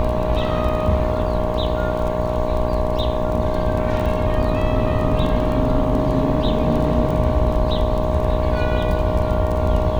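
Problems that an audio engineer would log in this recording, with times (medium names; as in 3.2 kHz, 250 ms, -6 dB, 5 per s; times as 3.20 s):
buzz 60 Hz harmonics 19 -24 dBFS
crackle 16 per s -24 dBFS
whine 620 Hz -23 dBFS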